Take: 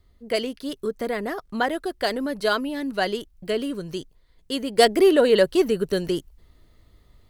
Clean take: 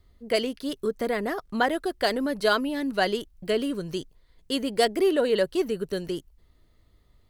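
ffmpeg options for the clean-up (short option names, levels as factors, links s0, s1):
-af "asetnsamples=n=441:p=0,asendcmd='4.78 volume volume -6dB',volume=1"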